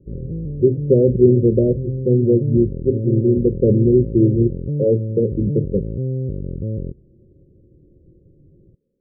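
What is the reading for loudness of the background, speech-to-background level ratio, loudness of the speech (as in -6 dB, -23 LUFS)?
-26.0 LUFS, 8.5 dB, -17.5 LUFS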